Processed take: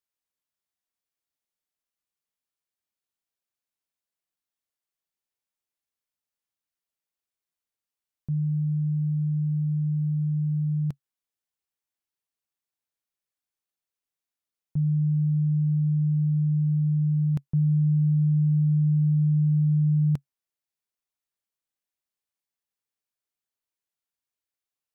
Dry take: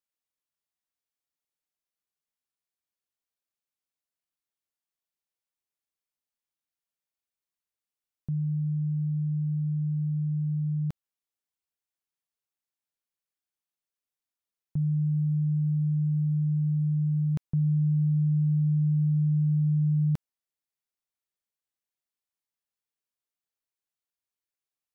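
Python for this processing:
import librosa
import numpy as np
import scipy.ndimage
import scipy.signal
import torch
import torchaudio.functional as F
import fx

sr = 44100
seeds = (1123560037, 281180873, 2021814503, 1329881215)

y = fx.dynamic_eq(x, sr, hz=140.0, q=4.6, threshold_db=-38.0, ratio=4.0, max_db=4)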